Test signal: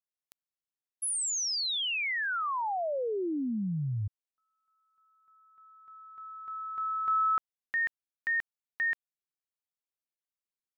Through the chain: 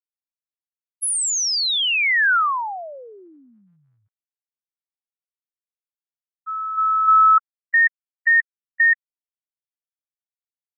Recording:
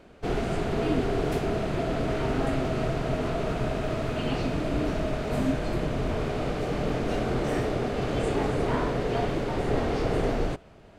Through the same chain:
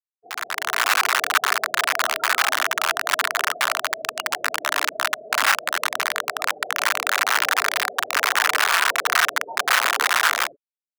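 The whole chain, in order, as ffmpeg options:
-af "afftfilt=real='re*gte(hypot(re,im),0.0891)':imag='im*gte(hypot(re,im),0.0891)':win_size=1024:overlap=0.75,aeval=exprs='(mod(11.2*val(0)+1,2)-1)/11.2':c=same,dynaudnorm=f=130:g=9:m=12dB,highpass=f=1.4k:t=q:w=1.8,volume=-2dB"

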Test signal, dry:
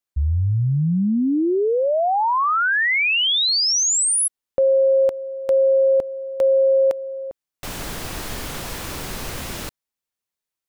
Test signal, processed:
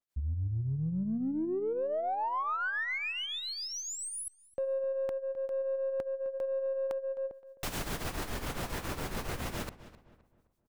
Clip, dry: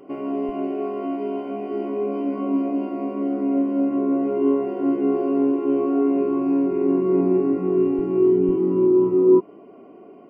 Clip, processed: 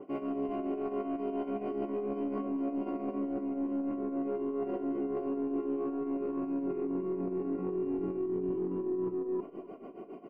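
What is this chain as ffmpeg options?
-filter_complex "[0:a]tremolo=f=7.2:d=0.82,areverse,acompressor=threshold=-32dB:ratio=10:attack=4.3:release=60:knee=1:detection=peak,areverse,aeval=exprs='0.112*(cos(1*acos(clip(val(0)/0.112,-1,1)))-cos(1*PI/2))+0.00398*(cos(4*acos(clip(val(0)/0.112,-1,1)))-cos(4*PI/2))':c=same,asplit=2[a][b];[b]asoftclip=type=tanh:threshold=-37dB,volume=-11.5dB[c];[a][c]amix=inputs=2:normalize=0,asplit=2[d][e];[e]adelay=260,lowpass=f=1.7k:p=1,volume=-15dB,asplit=2[f][g];[g]adelay=260,lowpass=f=1.7k:p=1,volume=0.4,asplit=2[h][i];[i]adelay=260,lowpass=f=1.7k:p=1,volume=0.4,asplit=2[j][k];[k]adelay=260,lowpass=f=1.7k:p=1,volume=0.4[l];[d][f][h][j][l]amix=inputs=5:normalize=0,adynamicequalizer=threshold=0.00355:dfrequency=2500:dqfactor=0.7:tfrequency=2500:tqfactor=0.7:attack=5:release=100:ratio=0.375:range=3.5:mode=cutabove:tftype=highshelf"

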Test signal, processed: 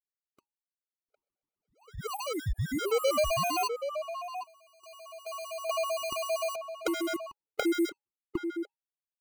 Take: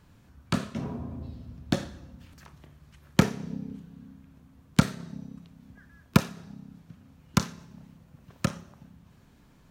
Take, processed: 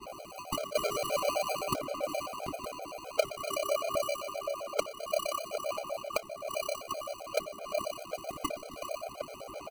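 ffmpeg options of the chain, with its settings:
-filter_complex "[0:a]equalizer=f=125:t=o:w=1:g=-3,equalizer=f=250:t=o:w=1:g=9,equalizer=f=500:t=o:w=1:g=12,equalizer=f=2k:t=o:w=1:g=6,acompressor=threshold=-33dB:ratio=16,agate=range=-33dB:threshold=-59dB:ratio=3:detection=peak,lowshelf=f=390:g=6.5,lowpass=f=2.2k:t=q:w=0.5098,lowpass=f=2.2k:t=q:w=0.6013,lowpass=f=2.2k:t=q:w=0.9,lowpass=f=2.2k:t=q:w=2.563,afreqshift=-2600,acrusher=samples=25:mix=1:aa=0.000001,aphaser=in_gain=1:out_gain=1:delay=2.2:decay=0.34:speed=0.52:type=sinusoidal,asplit=2[a][b];[b]adelay=758,volume=-7dB,highshelf=f=4k:g=-17.1[c];[a][c]amix=inputs=2:normalize=0,afftfilt=real='re*gt(sin(2*PI*7.7*pts/sr)*(1-2*mod(floor(b*sr/1024/420),2)),0)':imag='im*gt(sin(2*PI*7.7*pts/sr)*(1-2*mod(floor(b*sr/1024/420),2)),0)':win_size=1024:overlap=0.75,volume=4.5dB"

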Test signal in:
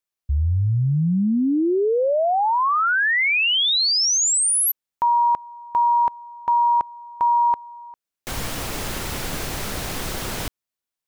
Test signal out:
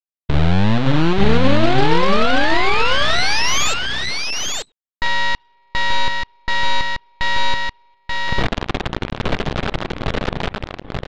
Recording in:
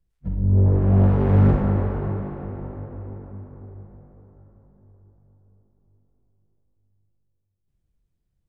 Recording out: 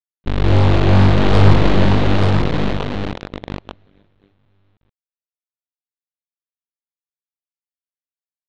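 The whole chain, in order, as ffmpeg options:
-filter_complex "[0:a]afftdn=nr=26:nf=-30,tiltshelf=f=810:g=3.5,bandreject=f=61.98:t=h:w=4,bandreject=f=123.96:t=h:w=4,bandreject=f=185.94:t=h:w=4,bandreject=f=247.92:t=h:w=4,bandreject=f=309.9:t=h:w=4,bandreject=f=371.88:t=h:w=4,bandreject=f=433.86:t=h:w=4,bandreject=f=495.84:t=h:w=4,bandreject=f=557.82:t=h:w=4,bandreject=f=619.8:t=h:w=4,bandreject=f=681.78:t=h:w=4,bandreject=f=743.76:t=h:w=4,bandreject=f=805.74:t=h:w=4,bandreject=f=867.72:t=h:w=4,bandreject=f=929.7:t=h:w=4,bandreject=f=991.68:t=h:w=4,bandreject=f=1.05366k:t=h:w=4,bandreject=f=1.11564k:t=h:w=4,bandreject=f=1.17762k:t=h:w=4,bandreject=f=1.2396k:t=h:w=4,bandreject=f=1.30158k:t=h:w=4,bandreject=f=1.36356k:t=h:w=4,bandreject=f=1.42554k:t=h:w=4,bandreject=f=1.48752k:t=h:w=4,bandreject=f=1.5495k:t=h:w=4,bandreject=f=1.61148k:t=h:w=4,bandreject=f=1.67346k:t=h:w=4,bandreject=f=1.73544k:t=h:w=4,bandreject=f=1.79742k:t=h:w=4,bandreject=f=1.8594k:t=h:w=4,bandreject=f=1.92138k:t=h:w=4,aresample=8000,acrusher=bits=5:dc=4:mix=0:aa=0.000001,aresample=44100,aeval=exprs='0.596*(cos(1*acos(clip(val(0)/0.596,-1,1)))-cos(1*PI/2))+0.0422*(cos(7*acos(clip(val(0)/0.596,-1,1)))-cos(7*PI/2))+0.188*(cos(8*acos(clip(val(0)/0.596,-1,1)))-cos(8*PI/2))':c=same,asplit=2[a][b];[b]aecho=0:1:884:0.668[c];[a][c]amix=inputs=2:normalize=0,volume=-1.5dB"

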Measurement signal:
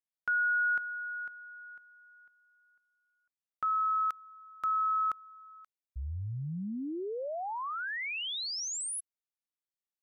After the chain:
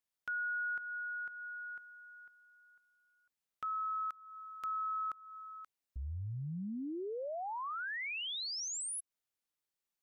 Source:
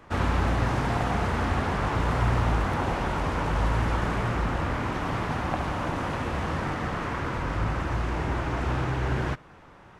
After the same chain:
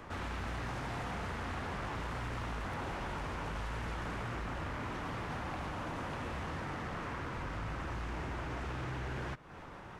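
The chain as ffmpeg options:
-filter_complex "[0:a]acrossover=split=1300[a][b];[a]asoftclip=type=hard:threshold=-28.5dB[c];[c][b]amix=inputs=2:normalize=0,acompressor=threshold=-45dB:ratio=2.5:attack=0.18:release=372:knee=1:detection=peak,volume=3.5dB"

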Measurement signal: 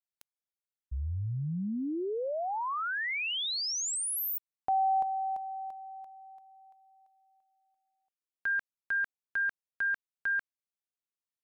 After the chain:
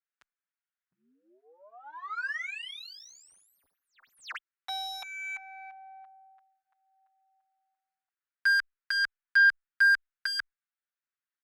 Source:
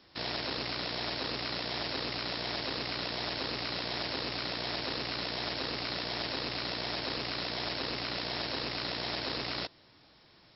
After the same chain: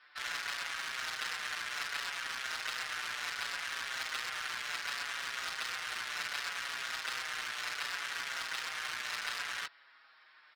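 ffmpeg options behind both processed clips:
-filter_complex "[0:a]aeval=exprs='0.0841*(cos(1*acos(clip(val(0)/0.0841,-1,1)))-cos(1*PI/2))+0.00422*(cos(2*acos(clip(val(0)/0.0841,-1,1)))-cos(2*PI/2))+0.00668*(cos(4*acos(clip(val(0)/0.0841,-1,1)))-cos(4*PI/2))+0.00119*(cos(5*acos(clip(val(0)/0.0841,-1,1)))-cos(5*PI/2))+0.0376*(cos(7*acos(clip(val(0)/0.0841,-1,1)))-cos(7*PI/2))':c=same,highpass=f=1.5k:t=q:w=2.5,adynamicsmooth=sensitivity=4:basefreq=2.5k,asplit=2[a][b];[b]adelay=6.2,afreqshift=-0.66[c];[a][c]amix=inputs=2:normalize=1"

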